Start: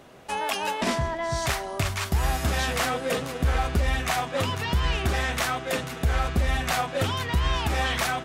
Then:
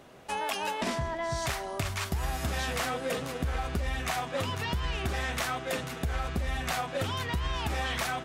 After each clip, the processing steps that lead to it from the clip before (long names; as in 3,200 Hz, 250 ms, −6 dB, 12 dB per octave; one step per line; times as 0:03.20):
downward compressor, threshold −24 dBFS, peak gain reduction 6.5 dB
level −3 dB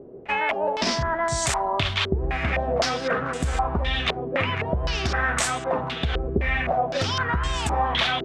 low-pass on a step sequencer 3.9 Hz 410–8,000 Hz
level +5.5 dB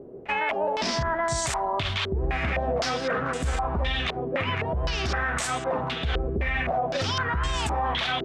brickwall limiter −17.5 dBFS, peak gain reduction 8 dB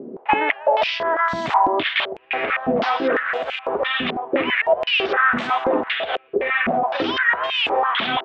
Chebyshev low-pass filter 3,300 Hz, order 3
high-pass on a step sequencer 6 Hz 220–2,600 Hz
level +4.5 dB